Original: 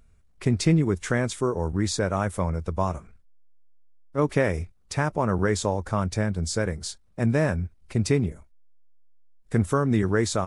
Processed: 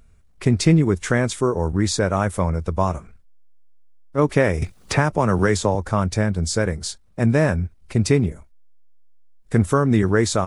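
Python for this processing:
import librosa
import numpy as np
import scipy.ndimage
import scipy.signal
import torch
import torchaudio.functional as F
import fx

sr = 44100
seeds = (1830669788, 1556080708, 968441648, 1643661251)

y = fx.band_squash(x, sr, depth_pct=70, at=(4.62, 5.75))
y = F.gain(torch.from_numpy(y), 5.0).numpy()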